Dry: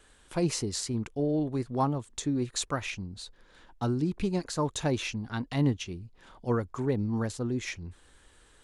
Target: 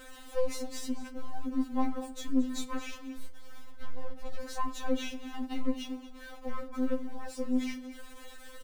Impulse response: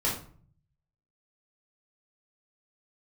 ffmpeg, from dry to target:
-filter_complex "[0:a]aeval=exprs='val(0)+0.5*0.0141*sgn(val(0))':c=same,aecho=1:1:225:0.168,acrossover=split=120|1400[a][b][c];[a]acompressor=threshold=-48dB:ratio=6[d];[d][b][c]amix=inputs=3:normalize=0,asettb=1/sr,asplit=3[e][f][g];[e]atrim=end=3.174[h];[f]atrim=start=3.17:end=4.26,asetpts=PTS-STARTPTS,afade=t=in:d=0.004:c=qsin,afade=t=out:st=1.086:d=0.004:c=qsin,aeval=exprs='abs(val(0))':c=same[i];[g]atrim=start=4.256[j];[h][i]acrossfade=d=0.004:c1=hsin:c2=qsin[k];[k][j]acrossfade=d=0.004:c1=qsin:c2=hsin,aeval=exprs='(tanh(22.4*val(0)+0.6)-tanh(0.6))/22.4':c=same,highshelf=f=2.7k:g=-7,asplit=2[l][m];[1:a]atrim=start_sample=2205[n];[m][n]afir=irnorm=-1:irlink=0,volume=-18.5dB[o];[l][o]amix=inputs=2:normalize=0,afftfilt=real='re*3.46*eq(mod(b,12),0)':imag='im*3.46*eq(mod(b,12),0)':win_size=2048:overlap=0.75"

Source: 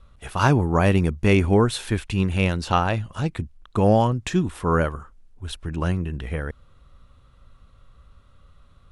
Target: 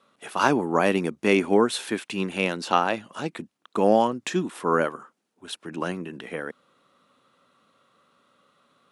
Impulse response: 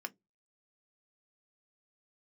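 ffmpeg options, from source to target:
-af "highpass=f=220:w=0.5412,highpass=f=220:w=1.3066"

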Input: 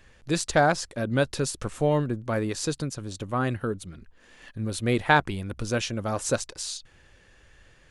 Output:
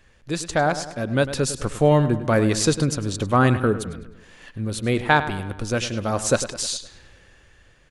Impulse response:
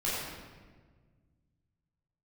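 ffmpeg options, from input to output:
-filter_complex "[0:a]dynaudnorm=f=260:g=9:m=11.5dB,asplit=2[a][b];[b]adelay=102,lowpass=f=4.4k:p=1,volume=-12.5dB,asplit=2[c][d];[d]adelay=102,lowpass=f=4.4k:p=1,volume=0.53,asplit=2[e][f];[f]adelay=102,lowpass=f=4.4k:p=1,volume=0.53,asplit=2[g][h];[h]adelay=102,lowpass=f=4.4k:p=1,volume=0.53,asplit=2[i][j];[j]adelay=102,lowpass=f=4.4k:p=1,volume=0.53[k];[c][e][g][i][k]amix=inputs=5:normalize=0[l];[a][l]amix=inputs=2:normalize=0,volume=-1dB"

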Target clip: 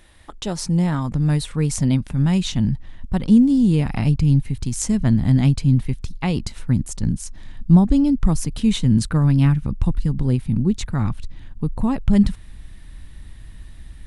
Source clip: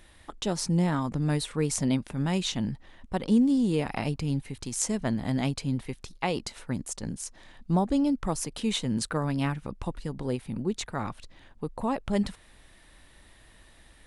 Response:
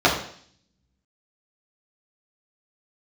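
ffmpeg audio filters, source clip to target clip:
-af "asubboost=boost=7:cutoff=190,volume=3dB"

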